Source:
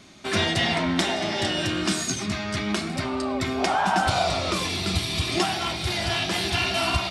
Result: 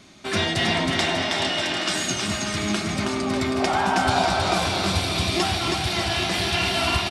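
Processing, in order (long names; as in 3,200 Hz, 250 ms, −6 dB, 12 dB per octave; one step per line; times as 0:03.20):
0:00.90–0:01.94: meter weighting curve A
on a send: bouncing-ball delay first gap 320 ms, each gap 0.85×, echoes 5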